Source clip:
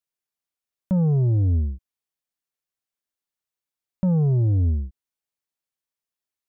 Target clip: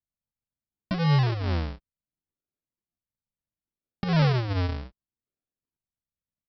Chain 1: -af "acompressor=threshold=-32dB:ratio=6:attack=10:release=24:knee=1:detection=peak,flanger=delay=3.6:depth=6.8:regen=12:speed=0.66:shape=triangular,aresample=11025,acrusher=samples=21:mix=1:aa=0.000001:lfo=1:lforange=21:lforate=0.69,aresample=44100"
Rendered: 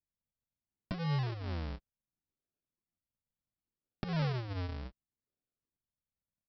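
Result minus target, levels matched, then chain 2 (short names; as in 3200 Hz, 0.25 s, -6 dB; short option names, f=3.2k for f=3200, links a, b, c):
compressor: peak gain reduction +11.5 dB
-af "flanger=delay=3.6:depth=6.8:regen=12:speed=0.66:shape=triangular,aresample=11025,acrusher=samples=21:mix=1:aa=0.000001:lfo=1:lforange=21:lforate=0.69,aresample=44100"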